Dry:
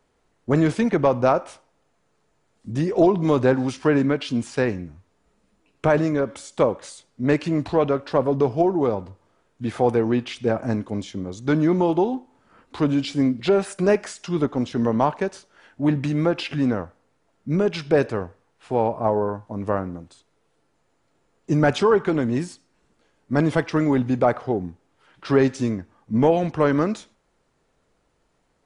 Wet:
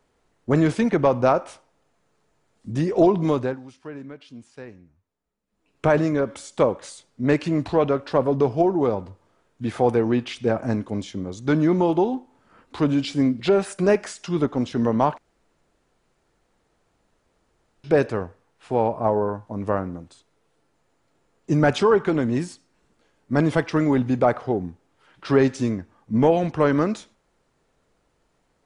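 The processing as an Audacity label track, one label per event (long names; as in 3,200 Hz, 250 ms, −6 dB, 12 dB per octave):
3.220000	5.850000	duck −18 dB, fades 0.38 s
15.180000	17.840000	fill with room tone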